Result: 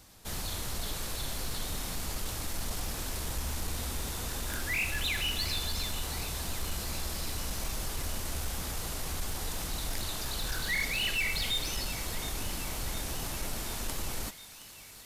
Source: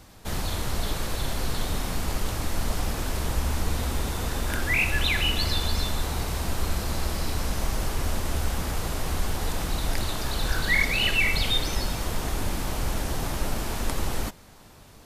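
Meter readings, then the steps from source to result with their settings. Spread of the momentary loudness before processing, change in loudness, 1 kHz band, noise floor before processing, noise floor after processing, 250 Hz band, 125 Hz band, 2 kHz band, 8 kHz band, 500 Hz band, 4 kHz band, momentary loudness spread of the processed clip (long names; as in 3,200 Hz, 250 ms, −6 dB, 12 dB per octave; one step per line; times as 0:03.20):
8 LU, −6.0 dB, −8.5 dB, −49 dBFS, −50 dBFS, −9.5 dB, −9.5 dB, −7.5 dB, −1.5 dB, −9.5 dB, −5.0 dB, 6 LU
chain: high-shelf EQ 3,100 Hz +9 dB
soft clipping −16 dBFS, distortion −18 dB
on a send: feedback echo with a high-pass in the loop 719 ms, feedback 76%, high-pass 1,200 Hz, level −14 dB
on the sum: level −8.5 dB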